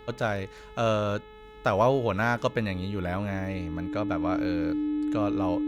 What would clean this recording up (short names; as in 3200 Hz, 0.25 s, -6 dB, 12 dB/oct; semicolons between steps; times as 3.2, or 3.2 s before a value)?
de-hum 429.3 Hz, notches 9; notch 300 Hz, Q 30